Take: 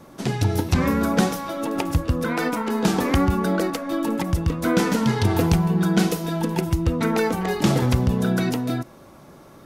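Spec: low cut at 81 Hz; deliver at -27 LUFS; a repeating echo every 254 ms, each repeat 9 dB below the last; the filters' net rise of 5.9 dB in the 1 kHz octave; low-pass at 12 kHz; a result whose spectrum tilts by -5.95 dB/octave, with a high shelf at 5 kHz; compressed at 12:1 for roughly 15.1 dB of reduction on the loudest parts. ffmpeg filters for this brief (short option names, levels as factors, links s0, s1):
-af "highpass=81,lowpass=12000,equalizer=f=1000:t=o:g=7.5,highshelf=f=5000:g=-6.5,acompressor=threshold=0.0355:ratio=12,aecho=1:1:254|508|762|1016:0.355|0.124|0.0435|0.0152,volume=1.88"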